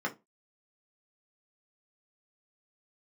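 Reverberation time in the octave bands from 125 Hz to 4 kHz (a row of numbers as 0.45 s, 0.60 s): 0.25 s, 0.25 s, 0.25 s, 0.20 s, 0.15 s, 0.15 s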